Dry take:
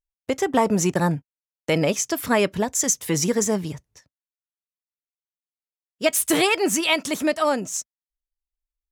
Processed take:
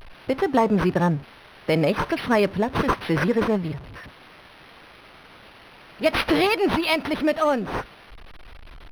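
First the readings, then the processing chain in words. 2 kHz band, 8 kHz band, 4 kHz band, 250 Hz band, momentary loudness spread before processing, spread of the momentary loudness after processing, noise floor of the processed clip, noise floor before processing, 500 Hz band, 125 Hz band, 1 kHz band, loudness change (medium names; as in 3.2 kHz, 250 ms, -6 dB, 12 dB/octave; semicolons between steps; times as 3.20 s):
0.0 dB, -22.5 dB, -2.5 dB, +1.0 dB, 11 LU, 12 LU, -48 dBFS, under -85 dBFS, +0.5 dB, +1.5 dB, +1.5 dB, -0.5 dB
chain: jump at every zero crossing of -34 dBFS; decimation joined by straight lines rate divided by 6×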